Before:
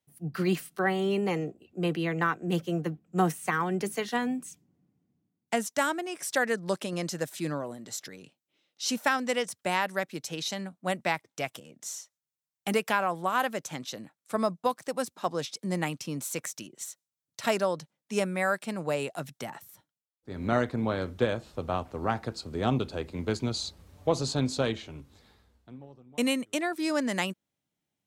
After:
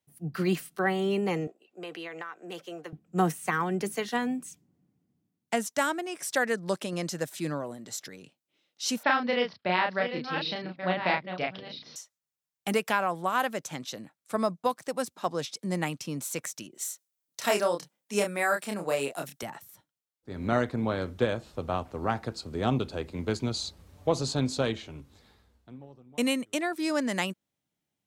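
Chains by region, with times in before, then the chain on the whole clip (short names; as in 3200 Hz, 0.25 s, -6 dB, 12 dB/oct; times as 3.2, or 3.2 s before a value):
1.47–2.93 HPF 530 Hz + high shelf 10000 Hz -8 dB + compressor, threshold -35 dBFS
9.03–11.96 reverse delay 0.691 s, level -9 dB + steep low-pass 4900 Hz 72 dB/oct + doubler 33 ms -3 dB
16.72–19.43 HPF 210 Hz + high shelf 9100 Hz +8.5 dB + doubler 29 ms -4.5 dB
whole clip: dry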